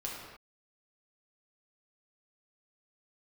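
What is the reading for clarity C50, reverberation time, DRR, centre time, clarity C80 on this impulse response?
0.0 dB, no single decay rate, -4.5 dB, 74 ms, 2.5 dB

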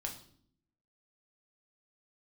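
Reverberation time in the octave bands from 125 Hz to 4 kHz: 0.90 s, 0.95 s, 0.65 s, 0.50 s, 0.50 s, 0.50 s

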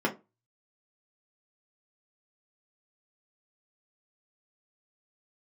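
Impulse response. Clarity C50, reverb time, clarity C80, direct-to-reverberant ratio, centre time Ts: 15.0 dB, 0.25 s, 22.5 dB, -1.5 dB, 13 ms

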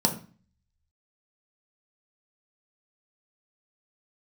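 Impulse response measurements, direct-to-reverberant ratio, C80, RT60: 2.5 dB, 16.0 dB, 0.40 s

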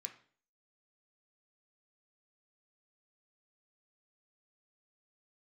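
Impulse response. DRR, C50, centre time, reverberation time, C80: 3.5 dB, 10.5 dB, 12 ms, 0.45 s, 15.5 dB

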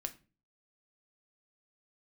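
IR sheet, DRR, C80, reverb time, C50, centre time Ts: 7.0 dB, 22.5 dB, 0.35 s, 16.5 dB, 5 ms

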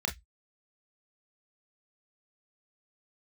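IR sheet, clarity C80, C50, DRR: 28.0 dB, 16.5 dB, 3.0 dB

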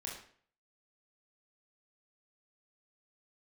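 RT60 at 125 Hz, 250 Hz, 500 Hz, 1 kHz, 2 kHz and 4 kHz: 0.55 s, 0.50 s, 0.55 s, 0.50 s, 0.50 s, 0.45 s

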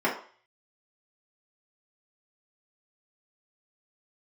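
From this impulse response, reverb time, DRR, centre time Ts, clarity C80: 0.45 s, -6.5 dB, 25 ms, 12.0 dB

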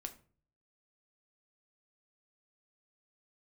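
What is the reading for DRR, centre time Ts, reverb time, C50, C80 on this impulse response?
5.0 dB, 7 ms, 0.45 s, 14.5 dB, 19.5 dB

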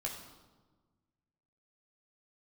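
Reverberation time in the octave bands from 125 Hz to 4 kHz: 2.0 s, 1.8 s, 1.4 s, 1.3 s, 0.90 s, 0.90 s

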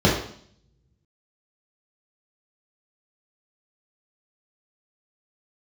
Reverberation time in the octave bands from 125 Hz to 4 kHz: 1.0 s, 0.75 s, 0.60 s, 0.55 s, 0.55 s, 0.65 s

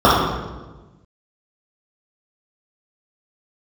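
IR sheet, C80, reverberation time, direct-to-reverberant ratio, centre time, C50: 2.5 dB, 1.2 s, -9.0 dB, 82 ms, -1.0 dB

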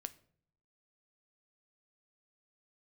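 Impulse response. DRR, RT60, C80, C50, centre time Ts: 11.5 dB, no single decay rate, 22.5 dB, 18.5 dB, 3 ms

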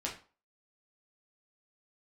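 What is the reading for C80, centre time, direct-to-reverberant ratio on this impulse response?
14.0 dB, 23 ms, -3.0 dB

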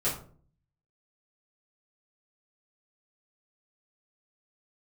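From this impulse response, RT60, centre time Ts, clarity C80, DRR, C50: 0.45 s, 30 ms, 12.0 dB, -10.5 dB, 7.0 dB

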